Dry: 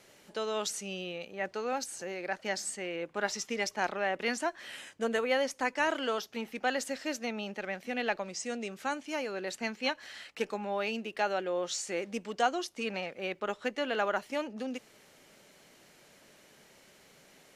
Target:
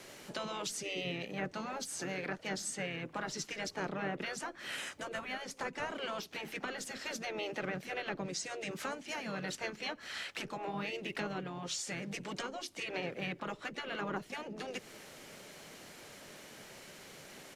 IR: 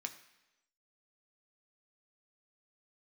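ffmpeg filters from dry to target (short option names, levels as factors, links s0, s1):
-filter_complex "[0:a]acrossover=split=350[s0][s1];[s1]acompressor=threshold=0.00708:ratio=8[s2];[s0][s2]amix=inputs=2:normalize=0,afftfilt=real='re*lt(hypot(re,im),0.0562)':imag='im*lt(hypot(re,im),0.0562)':win_size=1024:overlap=0.75,asplit=4[s3][s4][s5][s6];[s4]asetrate=33038,aresample=44100,atempo=1.33484,volume=0.224[s7];[s5]asetrate=35002,aresample=44100,atempo=1.25992,volume=0.355[s8];[s6]asetrate=58866,aresample=44100,atempo=0.749154,volume=0.126[s9];[s3][s7][s8][s9]amix=inputs=4:normalize=0,volume=2.11"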